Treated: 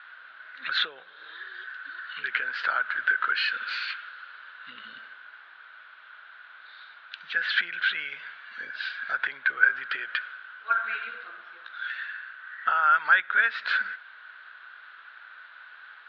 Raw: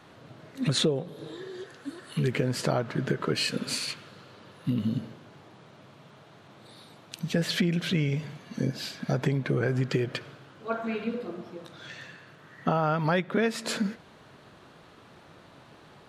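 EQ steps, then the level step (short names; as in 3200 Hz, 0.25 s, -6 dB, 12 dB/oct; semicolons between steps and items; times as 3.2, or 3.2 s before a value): resonant high-pass 1500 Hz, resonance Q 9.6; synth low-pass 3800 Hz, resonance Q 2.4; air absorption 290 m; 0.0 dB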